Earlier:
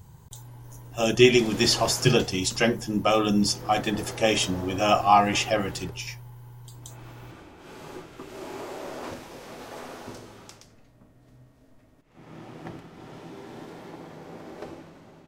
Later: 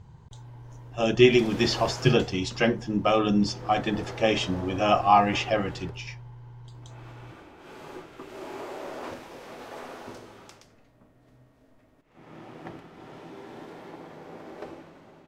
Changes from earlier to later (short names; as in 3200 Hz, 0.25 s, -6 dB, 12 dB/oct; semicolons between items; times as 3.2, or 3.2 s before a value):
speech: add air absorption 150 m; background: add tone controls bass -5 dB, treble -6 dB